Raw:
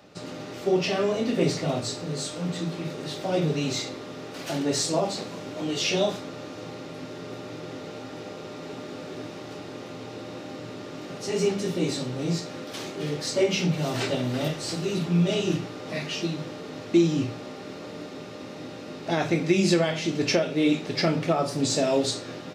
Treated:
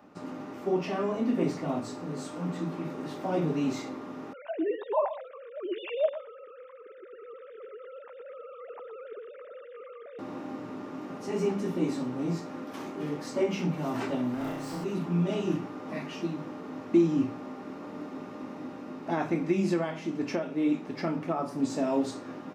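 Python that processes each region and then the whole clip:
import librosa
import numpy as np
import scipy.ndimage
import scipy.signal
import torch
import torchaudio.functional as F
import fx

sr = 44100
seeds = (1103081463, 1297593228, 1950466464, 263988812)

y = fx.chain(x, sr, fx.sine_speech(),
    fx.peak_eq(hz=940.0, db=2.5, octaves=0.43),
    fx.echo_single(ms=118, db=-13.0), at=(4.33, 10.19))
y = fx.chain(y, sr, fx.hum_notches(base_hz=50, count=8),
    fx.overload_stage(gain_db=29.5),
    fx.room_flutter(wall_m=5.8, rt60_s=0.68), at=(14.34, 14.84))
y = fx.graphic_eq(y, sr, hz=(125, 250, 500, 1000, 4000, 8000), db=(-5, 10, -3, 9, -9, -5))
y = fx.rider(y, sr, range_db=3, speed_s=2.0)
y = y * librosa.db_to_amplitude(-8.0)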